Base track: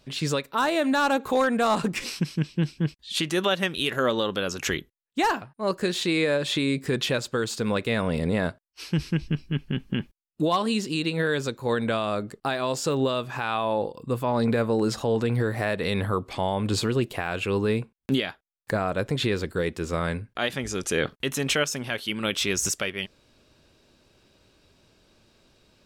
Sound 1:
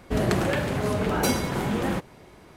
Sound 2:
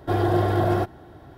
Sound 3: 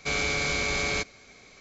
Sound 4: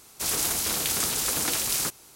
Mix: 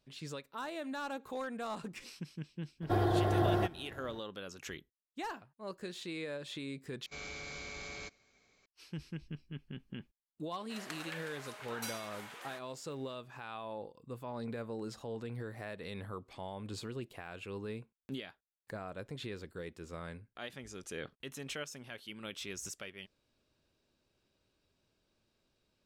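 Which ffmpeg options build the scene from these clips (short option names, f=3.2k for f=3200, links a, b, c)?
-filter_complex "[0:a]volume=-17.5dB[a];[2:a]alimiter=limit=-14dB:level=0:latency=1:release=348[b];[1:a]highpass=1.2k[c];[a]asplit=2[d][e];[d]atrim=end=7.064[f];[3:a]atrim=end=1.6,asetpts=PTS-STARTPTS,volume=-17.5dB[g];[e]atrim=start=8.656[h];[b]atrim=end=1.37,asetpts=PTS-STARTPTS,volume=-6dB,afade=t=in:d=0.004:c=hsin,afade=t=out:st=1.366:d=0.004:c=hsin,adelay=2820[i];[c]atrim=end=2.56,asetpts=PTS-STARTPTS,volume=-13dB,afade=t=in:d=0.004:c=hsin,afade=t=out:st=2.556:d=0.004:c=hsin,adelay=10590[j];[f][g]acrossfade=d=0.004:c1=hsin:c2=hsin[k];[k][h]acrossfade=d=0.004:c1=hsin:c2=hsin[l];[l][i][j]amix=inputs=3:normalize=0"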